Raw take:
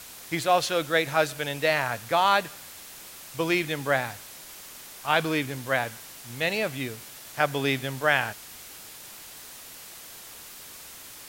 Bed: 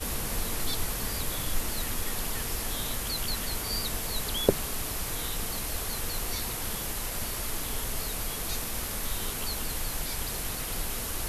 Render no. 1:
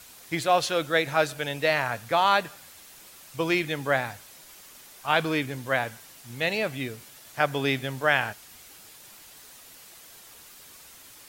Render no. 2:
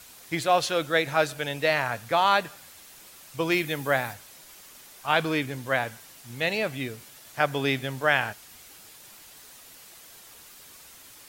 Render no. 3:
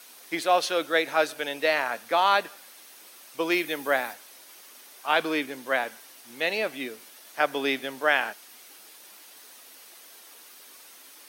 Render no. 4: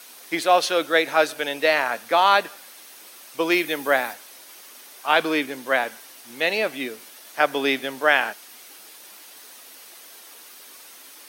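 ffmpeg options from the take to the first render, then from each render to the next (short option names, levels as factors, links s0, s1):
-af "afftdn=nr=6:nf=-45"
-filter_complex "[0:a]asettb=1/sr,asplit=3[s0][s1][s2];[s0]atrim=end=3.514[s3];[s1]atrim=start=3.51:end=4.14,asetpts=PTS-STARTPTS,afade=t=in:d=0.004:c=qsin,afade=t=out:st=0.626:d=0.004:c=qsin,equalizer=f=14000:w=0.73:g=8[s4];[s2]atrim=start=4.136[s5];[s3][s4]acrossfade=d=0.004:c1=hsin:c2=qsin[s6];[s6][s5]acrossfade=d=0.004:c1=qsin:c2=hsin"
-af "highpass=f=250:w=0.5412,highpass=f=250:w=1.3066,bandreject=f=7300:w=7.8"
-af "volume=1.68"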